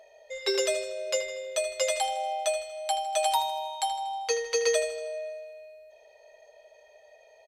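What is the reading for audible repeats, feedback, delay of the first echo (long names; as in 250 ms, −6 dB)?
4, 50%, 79 ms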